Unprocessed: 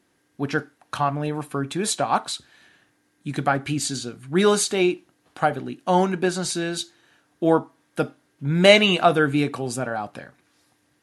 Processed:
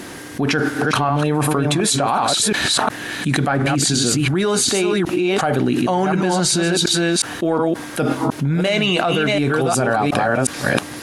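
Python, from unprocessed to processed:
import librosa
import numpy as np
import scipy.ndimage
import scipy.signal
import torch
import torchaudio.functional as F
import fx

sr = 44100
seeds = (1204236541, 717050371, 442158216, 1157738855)

p1 = fx.reverse_delay(x, sr, ms=361, wet_db=-6.5)
p2 = 10.0 ** (-11.0 / 20.0) * np.tanh(p1 / 10.0 ** (-11.0 / 20.0))
p3 = p1 + F.gain(torch.from_numpy(p2), -5.0).numpy()
p4 = fx.env_flatten(p3, sr, amount_pct=100)
y = F.gain(torch.from_numpy(p4), -11.0).numpy()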